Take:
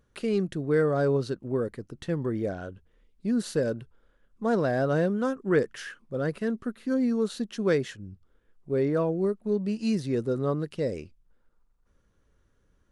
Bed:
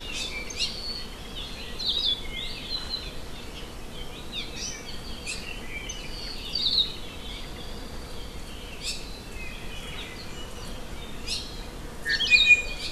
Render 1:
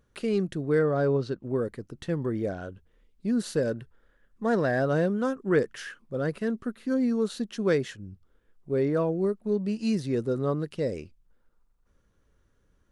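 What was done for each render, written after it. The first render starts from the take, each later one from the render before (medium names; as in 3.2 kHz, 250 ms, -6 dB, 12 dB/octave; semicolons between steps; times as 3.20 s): 0.79–1.44 s: distance through air 87 m; 3.69–4.80 s: peaking EQ 1.8 kHz +9.5 dB 0.25 oct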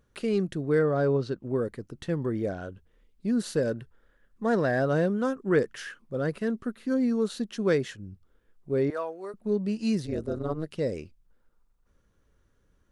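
8.90–9.34 s: Chebyshev high-pass 810 Hz; 10.05–10.69 s: AM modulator 160 Hz, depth 80%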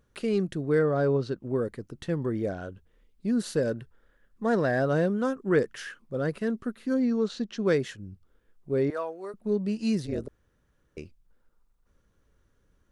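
7.00–7.66 s: low-pass 6.5 kHz 24 dB/octave; 10.28–10.97 s: room tone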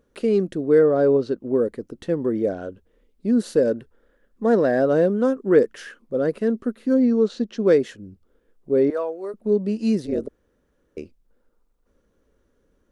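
graphic EQ 125/250/500 Hz -6/+7/+8 dB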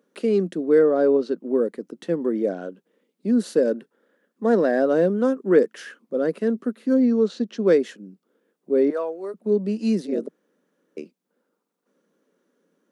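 Chebyshev high-pass 170 Hz, order 5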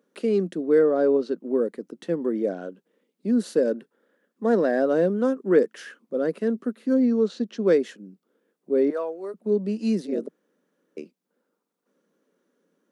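trim -2 dB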